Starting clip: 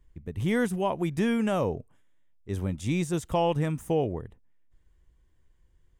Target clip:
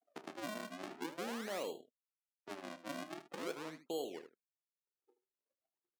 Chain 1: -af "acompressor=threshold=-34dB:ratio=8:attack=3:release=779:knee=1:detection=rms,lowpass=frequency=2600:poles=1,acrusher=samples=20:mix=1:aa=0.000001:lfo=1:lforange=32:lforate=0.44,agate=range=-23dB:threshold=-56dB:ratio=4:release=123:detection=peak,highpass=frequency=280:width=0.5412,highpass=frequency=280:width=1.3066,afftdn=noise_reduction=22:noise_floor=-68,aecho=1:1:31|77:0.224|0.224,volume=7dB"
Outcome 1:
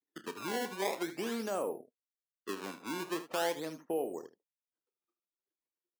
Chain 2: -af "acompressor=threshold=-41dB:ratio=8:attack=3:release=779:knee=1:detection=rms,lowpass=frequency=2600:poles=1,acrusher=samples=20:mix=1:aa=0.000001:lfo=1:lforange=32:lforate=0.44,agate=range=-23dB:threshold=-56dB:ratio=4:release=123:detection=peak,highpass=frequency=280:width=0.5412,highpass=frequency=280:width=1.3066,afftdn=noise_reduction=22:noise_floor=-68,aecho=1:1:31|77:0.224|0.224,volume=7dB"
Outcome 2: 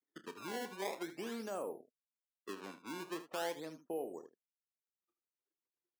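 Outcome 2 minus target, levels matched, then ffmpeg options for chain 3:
sample-and-hold swept by an LFO: distortion −9 dB
-af "acompressor=threshold=-41dB:ratio=8:attack=3:release=779:knee=1:detection=rms,lowpass=frequency=2600:poles=1,acrusher=samples=58:mix=1:aa=0.000001:lfo=1:lforange=92.8:lforate=0.44,agate=range=-23dB:threshold=-56dB:ratio=4:release=123:detection=peak,highpass=frequency=280:width=0.5412,highpass=frequency=280:width=1.3066,afftdn=noise_reduction=22:noise_floor=-68,aecho=1:1:31|77:0.224|0.224,volume=7dB"

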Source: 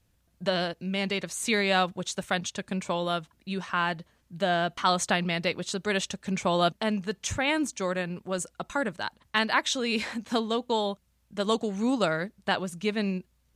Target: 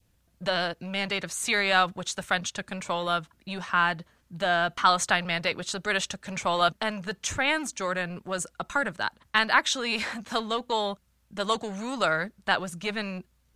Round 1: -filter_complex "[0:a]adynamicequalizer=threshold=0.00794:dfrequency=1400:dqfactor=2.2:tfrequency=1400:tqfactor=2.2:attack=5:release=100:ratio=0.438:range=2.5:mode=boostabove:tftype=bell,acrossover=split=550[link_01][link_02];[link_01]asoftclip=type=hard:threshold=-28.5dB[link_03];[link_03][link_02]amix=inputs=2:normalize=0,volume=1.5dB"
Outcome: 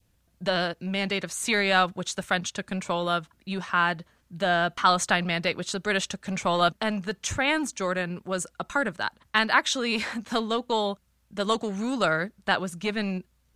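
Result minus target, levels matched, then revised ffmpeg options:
hard clipping: distortion −6 dB
-filter_complex "[0:a]adynamicequalizer=threshold=0.00794:dfrequency=1400:dqfactor=2.2:tfrequency=1400:tqfactor=2.2:attack=5:release=100:ratio=0.438:range=2.5:mode=boostabove:tftype=bell,acrossover=split=550[link_01][link_02];[link_01]asoftclip=type=hard:threshold=-36dB[link_03];[link_03][link_02]amix=inputs=2:normalize=0,volume=1.5dB"

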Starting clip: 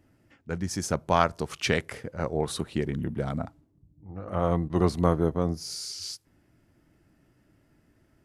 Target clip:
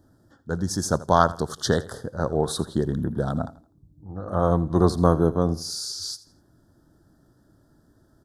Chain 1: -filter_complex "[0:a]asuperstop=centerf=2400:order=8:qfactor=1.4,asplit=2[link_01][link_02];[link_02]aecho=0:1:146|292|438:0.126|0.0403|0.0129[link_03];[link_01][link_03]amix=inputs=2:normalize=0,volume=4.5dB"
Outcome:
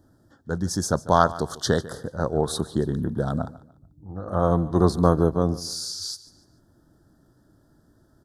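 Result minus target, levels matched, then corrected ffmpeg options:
echo 63 ms late
-filter_complex "[0:a]asuperstop=centerf=2400:order=8:qfactor=1.4,asplit=2[link_01][link_02];[link_02]aecho=0:1:83|166|249:0.126|0.0403|0.0129[link_03];[link_01][link_03]amix=inputs=2:normalize=0,volume=4.5dB"

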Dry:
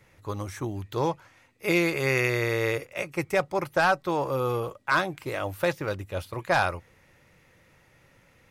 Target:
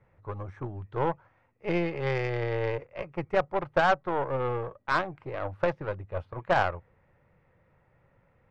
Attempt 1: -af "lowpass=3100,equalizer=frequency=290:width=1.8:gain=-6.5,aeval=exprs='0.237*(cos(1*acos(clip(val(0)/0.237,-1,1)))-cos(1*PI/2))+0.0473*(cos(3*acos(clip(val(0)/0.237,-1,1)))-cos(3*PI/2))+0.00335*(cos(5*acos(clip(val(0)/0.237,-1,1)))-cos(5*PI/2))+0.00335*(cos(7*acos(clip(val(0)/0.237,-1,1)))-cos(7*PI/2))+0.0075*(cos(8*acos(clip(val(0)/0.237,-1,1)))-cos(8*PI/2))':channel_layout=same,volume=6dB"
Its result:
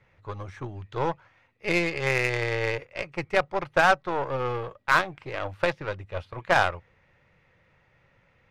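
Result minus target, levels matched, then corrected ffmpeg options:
4,000 Hz band +4.0 dB
-af "lowpass=1200,equalizer=frequency=290:width=1.8:gain=-6.5,aeval=exprs='0.237*(cos(1*acos(clip(val(0)/0.237,-1,1)))-cos(1*PI/2))+0.0473*(cos(3*acos(clip(val(0)/0.237,-1,1)))-cos(3*PI/2))+0.00335*(cos(5*acos(clip(val(0)/0.237,-1,1)))-cos(5*PI/2))+0.00335*(cos(7*acos(clip(val(0)/0.237,-1,1)))-cos(7*PI/2))+0.0075*(cos(8*acos(clip(val(0)/0.237,-1,1)))-cos(8*PI/2))':channel_layout=same,volume=6dB"

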